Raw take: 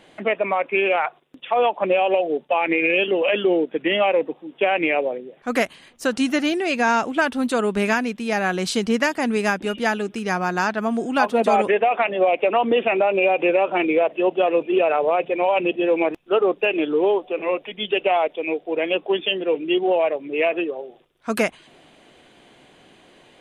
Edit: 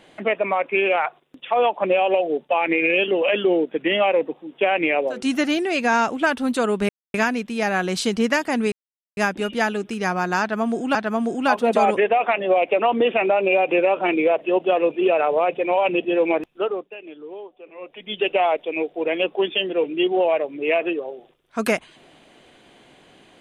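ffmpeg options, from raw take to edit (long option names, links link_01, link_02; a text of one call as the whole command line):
ffmpeg -i in.wav -filter_complex "[0:a]asplit=7[link_01][link_02][link_03][link_04][link_05][link_06][link_07];[link_01]atrim=end=5.31[link_08];[link_02]atrim=start=6.02:end=7.84,asetpts=PTS-STARTPTS,afade=type=out:start_time=1.816:duration=0.004:curve=hsin,apad=pad_dur=0.25[link_09];[link_03]atrim=start=7.84:end=9.42,asetpts=PTS-STARTPTS,afade=type=in:duration=0.004:curve=hsin,afade=type=out:start_time=1.576:duration=0.004:curve=hsin,apad=pad_dur=0.45[link_10];[link_04]atrim=start=9.42:end=11.202,asetpts=PTS-STARTPTS,afade=type=in:duration=0.004:curve=hsin[link_11];[link_05]atrim=start=10.658:end=16.6,asetpts=PTS-STARTPTS,afade=type=out:start_time=5.472:duration=0.47:silence=0.133352[link_12];[link_06]atrim=start=16.6:end=17.49,asetpts=PTS-STARTPTS,volume=-17.5dB[link_13];[link_07]atrim=start=17.49,asetpts=PTS-STARTPTS,afade=type=in:duration=0.47:silence=0.133352[link_14];[link_09][link_10][link_11]concat=n=3:v=0:a=1[link_15];[link_08][link_15]acrossfade=duration=0.24:curve1=tri:curve2=tri[link_16];[link_12][link_13][link_14]concat=n=3:v=0:a=1[link_17];[link_16][link_17]acrossfade=duration=0.004:curve1=hsin:curve2=hsin" out.wav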